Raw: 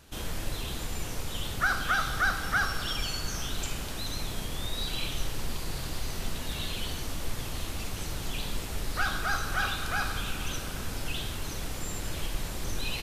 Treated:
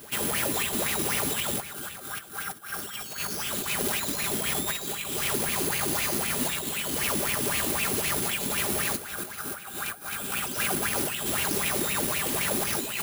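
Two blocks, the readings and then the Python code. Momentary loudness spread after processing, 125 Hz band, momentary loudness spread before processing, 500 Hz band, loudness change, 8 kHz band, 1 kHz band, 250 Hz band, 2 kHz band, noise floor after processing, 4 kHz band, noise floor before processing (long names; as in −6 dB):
9 LU, −2.5 dB, 8 LU, +8.5 dB, +6.0 dB, +10.5 dB, +1.0 dB, +6.5 dB, 0.0 dB, −41 dBFS, +2.5 dB, −37 dBFS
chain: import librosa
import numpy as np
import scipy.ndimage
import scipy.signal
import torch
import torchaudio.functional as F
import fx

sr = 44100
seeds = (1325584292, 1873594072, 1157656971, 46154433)

p1 = scipy.signal.sosfilt(scipy.signal.butter(4, 80.0, 'highpass', fs=sr, output='sos'), x)
p2 = p1 + 0.46 * np.pad(p1, (int(5.0 * sr / 1000.0), 0))[:len(p1)]
p3 = fx.over_compress(p2, sr, threshold_db=-38.0, ratio=-0.5)
p4 = p3 + fx.echo_feedback(p3, sr, ms=395, feedback_pct=38, wet_db=-13.0, dry=0)
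p5 = (np.kron(p4[::4], np.eye(4)[0]) * 4)[:len(p4)]
y = fx.bell_lfo(p5, sr, hz=3.9, low_hz=270.0, high_hz=2600.0, db=15)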